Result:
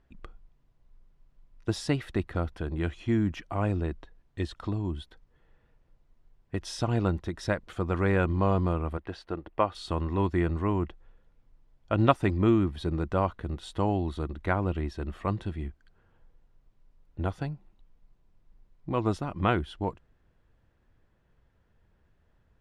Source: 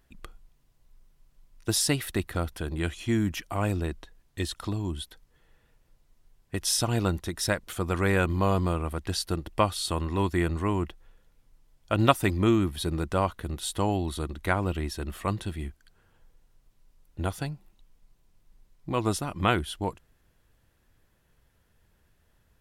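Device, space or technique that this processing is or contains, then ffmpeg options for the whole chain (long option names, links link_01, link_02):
through cloth: -filter_complex "[0:a]asettb=1/sr,asplit=3[link_01][link_02][link_03];[link_01]atrim=end=8.974[link_04];[link_02]atrim=start=8.97:end=9.75,asetpts=PTS-STARTPTS,afade=type=in:duration=0.004:curve=qsin,afade=type=out:start_time=0.776:duration=0.004:curve=qsin,bass=frequency=250:gain=-10,treble=frequency=4000:gain=-14[link_05];[link_03]atrim=start=9.746[link_06];[link_04][link_05]acrossfade=duration=0.004:curve1=hsin:curve2=qsin[link_07];[link_07][link_06]acrossfade=duration=0.004:curve1=qsin:curve2=hsin,lowpass=6800,highshelf=frequency=2900:gain=-13.5"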